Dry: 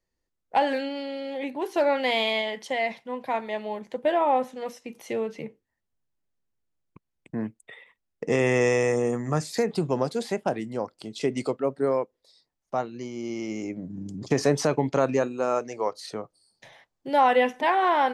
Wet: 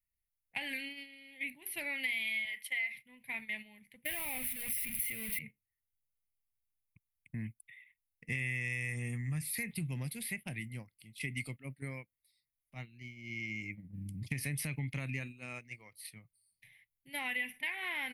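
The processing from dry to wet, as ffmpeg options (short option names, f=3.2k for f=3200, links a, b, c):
-filter_complex "[0:a]asettb=1/sr,asplit=3[a][b][c];[a]atrim=end=2.454[d];[b]atrim=start=2.45:end=2.95,asetpts=PTS-STARTPTS,afade=t=in:d=0.004:c=qsin,afade=t=out:st=0.496:d=0.004:c=qsin,highpass=510[e];[c]atrim=start=2.946[f];[d][e]acrossfade=d=0.004:c1=hsin:c2=qsin[g];[g][f]acrossfade=d=0.004:c1=qsin:c2=hsin,asettb=1/sr,asplit=3[h][i][j];[h]atrim=end=4.054[k];[i]atrim=start=4.05:end=5.39,asetpts=PTS-STARTPTS,afade=t=in:d=0.004:c=qsin,afade=t=out:st=1.336:d=0.004:c=qsin,aeval=exprs='val(0)+0.5*0.0355*sgn(val(0))':c=same[l];[j]atrim=start=5.386[m];[k][l]acrossfade=d=0.004:c1=hsin:c2=qsin[n];[n][m]acrossfade=d=0.004:c1=qsin:c2=hsin,firequalizer=gain_entry='entry(110,0);entry(190,-10);entry(420,-29);entry(1400,-23);entry(2100,5);entry(3300,-7);entry(6900,-19);entry(9900,12)':delay=0.05:min_phase=1,agate=range=-9dB:threshold=-44dB:ratio=16:detection=peak,acompressor=threshold=-34dB:ratio=6,volume=1dB"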